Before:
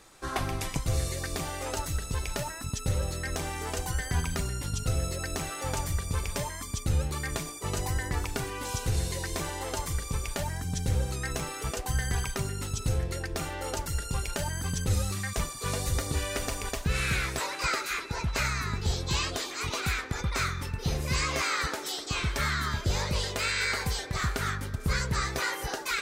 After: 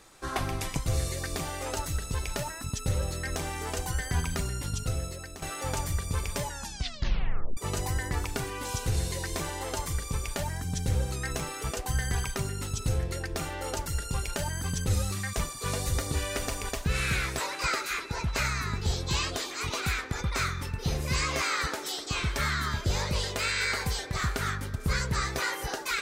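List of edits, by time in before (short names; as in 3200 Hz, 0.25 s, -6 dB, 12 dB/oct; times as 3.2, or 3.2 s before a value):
4.7–5.42 fade out, to -13 dB
6.41 tape stop 1.16 s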